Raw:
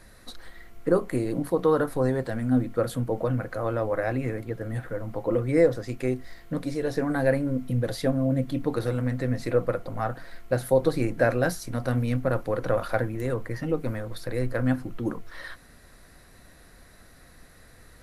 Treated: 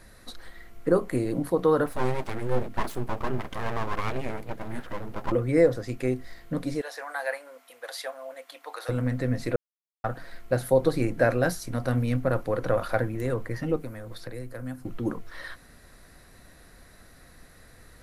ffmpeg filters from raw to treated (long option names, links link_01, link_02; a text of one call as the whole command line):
ffmpeg -i in.wav -filter_complex "[0:a]asettb=1/sr,asplit=3[link_01][link_02][link_03];[link_01]atrim=end=1.864[link_04];[link_02]atrim=start=1.86:end=5.32,asetpts=PTS-STARTPTS,afade=type=in:duration=0.004:curve=qsin,afade=type=out:start_time=3.456:duration=0.004:curve=qsin,aeval=exprs='abs(val(0))':channel_layout=same[link_05];[link_03]atrim=start=5.316[link_06];[link_04][link_05]acrossfade=duration=0.004:curve1=hsin:curve2=qsin[link_07];[link_07][link_06]acrossfade=duration=0.004:curve1=qsin:curve2=hsin,asettb=1/sr,asplit=3[link_08][link_09][link_10];[link_08]atrim=end=6.814[link_11];[link_09]atrim=start=6.81:end=8.89,asetpts=PTS-STARTPTS,afade=type=in:duration=0.004:curve=qsin,afade=type=out:start_time=2.076:duration=0.004:curve=qsin,highpass=frequency=710:width=0.5412,highpass=frequency=710:width=1.3066[link_12];[link_10]atrim=start=8.886[link_13];[link_11][link_12]acrossfade=duration=0.004:curve1=hsin:curve2=qsin[link_14];[link_14][link_13]acrossfade=duration=0.004:curve1=qsin:curve2=hsin,asettb=1/sr,asplit=3[link_15][link_16][link_17];[link_15]atrim=end=13.764[link_18];[link_16]atrim=start=13.76:end=14.85,asetpts=PTS-STARTPTS,afade=type=in:duration=0.004:curve=qsin,afade=type=out:start_time=1.086:duration=0.004:curve=qsin,acrossover=split=230|6200[link_19][link_20][link_21];[link_19]acompressor=threshold=-38dB:ratio=4[link_22];[link_20]acompressor=threshold=-40dB:ratio=4[link_23];[link_21]acompressor=threshold=-54dB:ratio=4[link_24];[link_22][link_23][link_24]amix=inputs=3:normalize=0[link_25];[link_17]atrim=start=14.846[link_26];[link_18][link_25]acrossfade=duration=0.004:curve1=hsin:curve2=qsin[link_27];[link_27][link_26]acrossfade=duration=0.004:curve1=qsin:curve2=hsin,asplit=3[link_28][link_29][link_30];[link_28]atrim=end=9.56,asetpts=PTS-STARTPTS,afade=type=out:start_time=9.556:duration=0.004:curve=hsin[link_31];[link_29]atrim=start=9.56:end=10.04,asetpts=PTS-STARTPTS,volume=0[link_32];[link_30]atrim=start=10.04,asetpts=PTS-STARTPTS,afade=type=in:duration=0.004:curve=hsin[link_33];[link_31][link_32][link_33]concat=n=3:v=0:a=1" out.wav